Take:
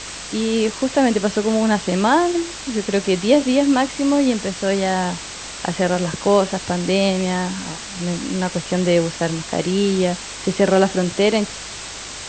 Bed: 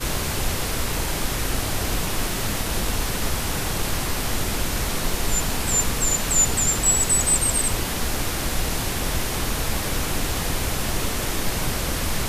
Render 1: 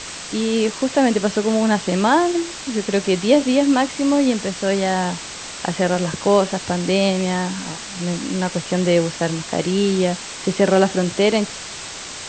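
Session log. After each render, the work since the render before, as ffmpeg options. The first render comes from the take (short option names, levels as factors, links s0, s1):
-af "bandreject=f=50:t=h:w=4,bandreject=f=100:t=h:w=4"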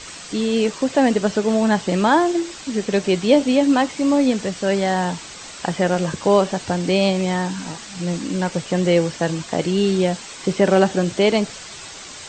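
-af "afftdn=nr=7:nf=-33"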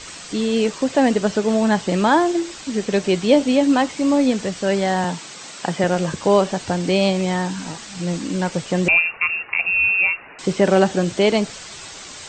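-filter_complex "[0:a]asettb=1/sr,asplit=3[s0][s1][s2];[s0]atrim=end=5.044[s3];[s1]atrim=start=5.04:end=5.84,asetpts=PTS-STARTPTS,afade=t=in:d=0.004:c=qsin,afade=t=out:st=0.796:d=0.004:c=qsin,highpass=f=120:w=0.5412,highpass=f=120:w=1.3066[s4];[s2]atrim=start=5.836[s5];[s3][s4]acrossfade=d=0.004:c1=hsin:c2=qsin[s6];[s6][s5]acrossfade=d=0.004:c1=qsin:c2=hsin,asettb=1/sr,asplit=3[s7][s8][s9];[s7]atrim=end=8.884[s10];[s8]atrim=start=8.88:end=10.39,asetpts=PTS-STARTPTS,afade=t=in:d=0.004:c=qsin,afade=t=out:st=1.506:d=0.004:c=qsin,lowpass=f=2500:t=q:w=0.5098,lowpass=f=2500:t=q:w=0.6013,lowpass=f=2500:t=q:w=0.9,lowpass=f=2500:t=q:w=2.563,afreqshift=-2900[s11];[s9]atrim=start=10.386[s12];[s10][s11]acrossfade=d=0.004:c1=hsin:c2=qsin[s13];[s13][s12]acrossfade=d=0.004:c1=qsin:c2=hsin"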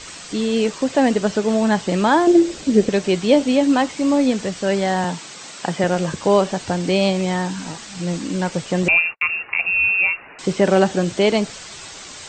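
-filter_complex "[0:a]asettb=1/sr,asplit=3[s0][s1][s2];[s0]atrim=end=2.274[s3];[s1]atrim=start=2.27:end=2.89,asetpts=PTS-STARTPTS,afade=t=in:d=0.004:c=qsin,afade=t=out:st=0.616:d=0.004:c=qsin,lowshelf=f=690:t=q:w=1.5:g=7.5[s4];[s2]atrim=start=2.886[s5];[s3][s4]acrossfade=d=0.004:c1=hsin:c2=qsin[s6];[s6][s5]acrossfade=d=0.004:c1=qsin:c2=hsin,asettb=1/sr,asplit=3[s7][s8][s9];[s7]atrim=end=8.834[s10];[s8]atrim=start=8.83:end=9.35,asetpts=PTS-STARTPTS,afade=t=in:d=0.004:c=qsin,afade=t=out:st=0.516:d=0.004:c=qsin,agate=range=0.00355:threshold=0.0224:ratio=16:release=100:detection=peak[s11];[s9]atrim=start=9.346[s12];[s10][s11]acrossfade=d=0.004:c1=hsin:c2=qsin[s13];[s13][s12]acrossfade=d=0.004:c1=qsin:c2=hsin"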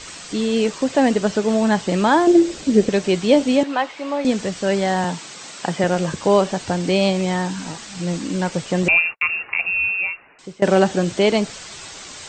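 -filter_complex "[0:a]asettb=1/sr,asplit=3[s0][s1][s2];[s0]atrim=end=3.634[s3];[s1]atrim=start=3.63:end=4.25,asetpts=PTS-STARTPTS,afade=t=in:d=0.004:c=qsin,afade=t=out:st=0.616:d=0.004:c=qsin,acrossover=split=450 4000:gain=0.141 1 0.158[s4][s5][s6];[s4][s5][s6]amix=inputs=3:normalize=0[s7];[s2]atrim=start=4.246[s8];[s3][s7]acrossfade=d=0.004:c1=hsin:c2=qsin[s9];[s9][s8]acrossfade=d=0.004:c1=qsin:c2=hsin,asplit=2[s10][s11];[s10]atrim=end=10.62,asetpts=PTS-STARTPTS,afade=t=out:st=9.45:d=1.17:silence=0.0944061[s12];[s11]atrim=start=10.62,asetpts=PTS-STARTPTS,afade=t=in:d=0.004:c=hsin:silence=0.0944061[s13];[s12][s13]concat=n=2:v=0:a=1"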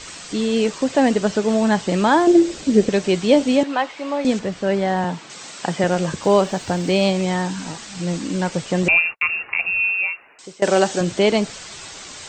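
-filter_complex "[0:a]asettb=1/sr,asplit=3[s0][s1][s2];[s0]atrim=end=4.394[s3];[s1]atrim=start=4.39:end=5.3,asetpts=PTS-STARTPTS,afade=t=in:d=0.004:c=qsin,afade=t=out:st=0.906:d=0.004:c=qsin,lowpass=f=2300:p=1[s4];[s2]atrim=start=5.296[s5];[s3][s4]acrossfade=d=0.004:c1=hsin:c2=qsin[s6];[s6][s5]acrossfade=d=0.004:c1=qsin:c2=hsin,asettb=1/sr,asplit=3[s7][s8][s9];[s7]atrim=end=6.234[s10];[s8]atrim=start=6.23:end=7.12,asetpts=PTS-STARTPTS,afade=t=in:d=0.004:c=qsin,afade=t=out:st=0.886:d=0.004:c=qsin,acrusher=bits=8:mix=0:aa=0.5[s11];[s9]atrim=start=7.116[s12];[s10][s11]acrossfade=d=0.004:c1=hsin:c2=qsin[s13];[s13][s12]acrossfade=d=0.004:c1=qsin:c2=hsin,asettb=1/sr,asplit=3[s14][s15][s16];[s14]atrim=end=9.804[s17];[s15]atrim=start=9.8:end=11.01,asetpts=PTS-STARTPTS,afade=t=in:d=0.004:c=qsin,afade=t=out:st=1.206:d=0.004:c=qsin,bass=f=250:g=-9,treble=f=4000:g=7[s18];[s16]atrim=start=11.006[s19];[s17][s18]acrossfade=d=0.004:c1=hsin:c2=qsin[s20];[s20][s19]acrossfade=d=0.004:c1=qsin:c2=hsin"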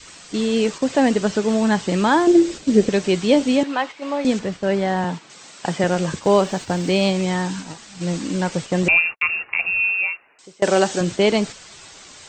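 -af "agate=range=0.501:threshold=0.0398:ratio=16:detection=peak,adynamicequalizer=threshold=0.0251:dfrequency=650:dqfactor=2.2:tfrequency=650:tqfactor=2.2:attack=5:release=100:ratio=0.375:range=2:mode=cutabove:tftype=bell"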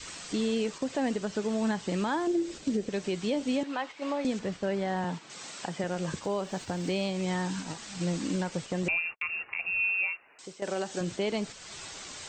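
-af "acompressor=threshold=0.0126:ratio=1.5,alimiter=limit=0.0944:level=0:latency=1:release=342"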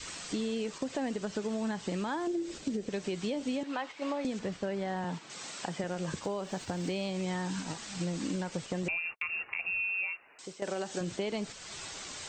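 -af "acompressor=threshold=0.0316:ratio=6"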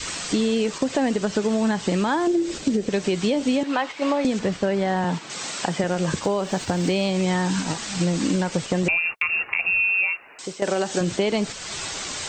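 -af "volume=3.98"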